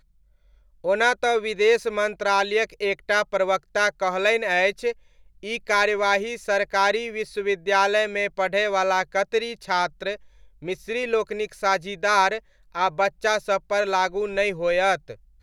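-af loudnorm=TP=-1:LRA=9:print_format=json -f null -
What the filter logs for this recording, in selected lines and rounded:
"input_i" : "-23.0",
"input_tp" : "-5.6",
"input_lra" : "2.7",
"input_thresh" : "-33.4",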